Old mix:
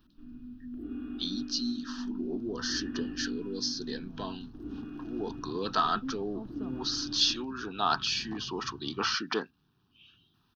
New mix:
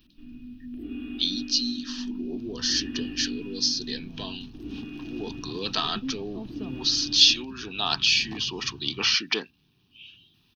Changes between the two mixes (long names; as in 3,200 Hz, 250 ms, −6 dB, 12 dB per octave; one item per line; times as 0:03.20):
first sound +3.0 dB
second sound +4.5 dB
master: add high shelf with overshoot 1,800 Hz +7.5 dB, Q 3